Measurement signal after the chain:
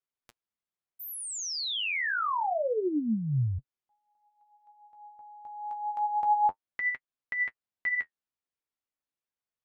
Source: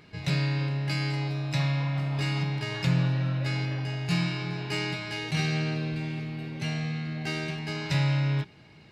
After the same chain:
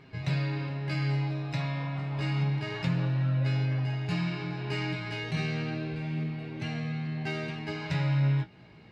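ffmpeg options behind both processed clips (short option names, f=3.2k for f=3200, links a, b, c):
-filter_complex "[0:a]lowpass=f=2.4k:p=1,asplit=2[a][b];[b]acompressor=threshold=-34dB:ratio=6,volume=-2.5dB[c];[a][c]amix=inputs=2:normalize=0,flanger=delay=7.5:depth=10:regen=36:speed=0.28:shape=sinusoidal"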